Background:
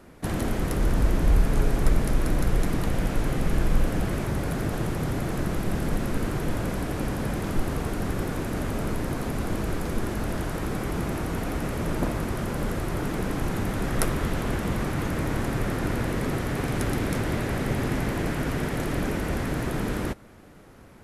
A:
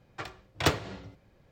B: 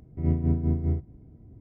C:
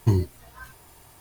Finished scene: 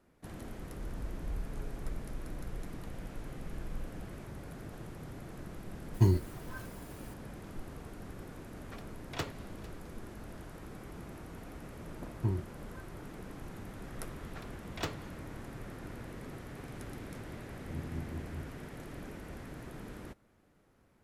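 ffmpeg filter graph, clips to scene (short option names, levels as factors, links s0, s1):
-filter_complex "[3:a]asplit=2[s0][s1];[1:a]asplit=2[s2][s3];[0:a]volume=0.126[s4];[s2]aecho=1:1:452:0.112[s5];[s1]lowpass=2100[s6];[s0]atrim=end=1.2,asetpts=PTS-STARTPTS,volume=0.631,afade=t=in:d=0.004:c=hsin,afade=t=out:st=1.196:d=0.004:c=hsin,adelay=5940[s7];[s5]atrim=end=1.51,asetpts=PTS-STARTPTS,volume=0.237,afade=t=in:d=0.004:c=hsin,afade=t=out:st=1.506:d=0.004:c=hsin,adelay=8530[s8];[s6]atrim=end=1.2,asetpts=PTS-STARTPTS,volume=0.266,afade=t=in:d=0.004:c=hsin,afade=t=out:st=1.196:d=0.004:c=hsin,adelay=12170[s9];[s3]atrim=end=1.51,asetpts=PTS-STARTPTS,volume=0.251,afade=t=in:d=0.004:c=hsin,afade=t=out:st=1.506:d=0.004:c=hsin,adelay=14170[s10];[2:a]atrim=end=1.6,asetpts=PTS-STARTPTS,volume=0.141,afade=t=in:d=0.004:c=hsin,afade=t=out:st=1.596:d=0.004:c=hsin,adelay=17470[s11];[s4][s7][s8][s9][s10][s11]amix=inputs=6:normalize=0"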